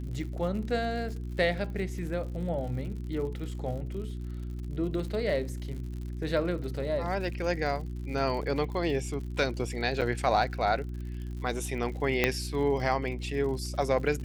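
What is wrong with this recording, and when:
surface crackle 83 per second −39 dBFS
mains hum 60 Hz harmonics 6 −36 dBFS
0:10.01–0:10.02: drop-out 7.2 ms
0:12.24: click −9 dBFS

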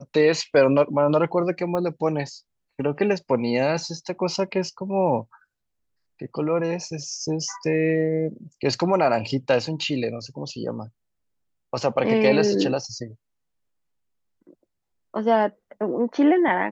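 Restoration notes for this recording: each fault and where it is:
0:01.75: click −16 dBFS

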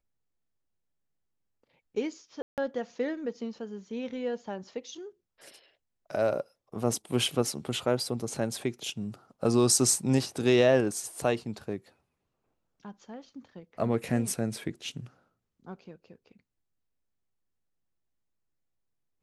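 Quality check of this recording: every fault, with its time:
0:02.42–0:02.58: drop-out 158 ms

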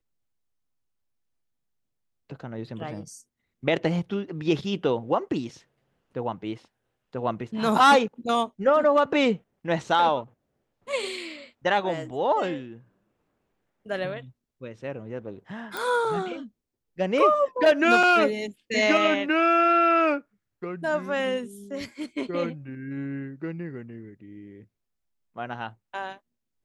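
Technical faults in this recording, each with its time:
0:15.77: click
0:18.03: drop-out 3.9 ms

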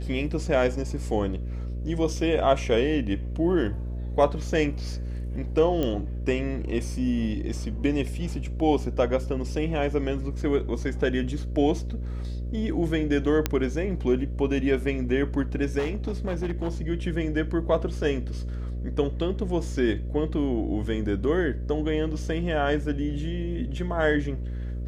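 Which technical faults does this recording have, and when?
mains buzz 60 Hz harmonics 10 −31 dBFS
0:05.83: click −15 dBFS
0:13.46: click −8 dBFS
0:15.78–0:16.70: clipping −23 dBFS

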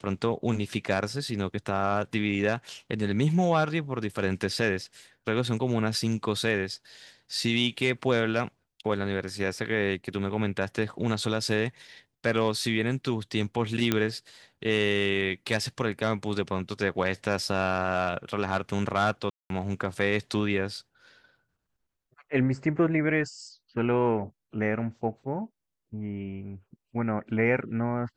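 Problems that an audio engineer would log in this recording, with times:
0:13.92: click −9 dBFS
0:19.30–0:19.50: drop-out 202 ms

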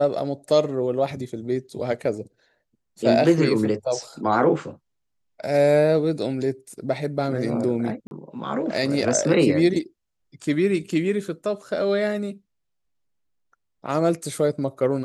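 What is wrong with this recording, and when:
0:08.07–0:08.11: drop-out 41 ms

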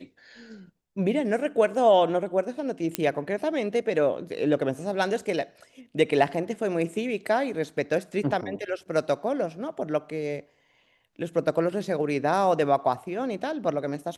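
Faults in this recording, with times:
0:02.95: click −8 dBFS

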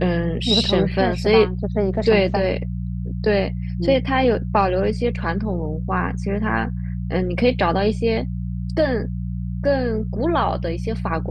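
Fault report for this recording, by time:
mains hum 60 Hz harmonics 3 −26 dBFS

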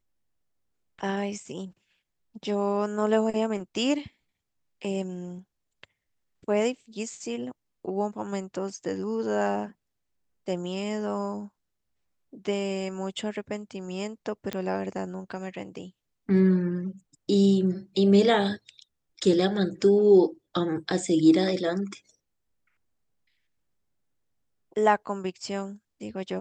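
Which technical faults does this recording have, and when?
0:14.53: click −16 dBFS

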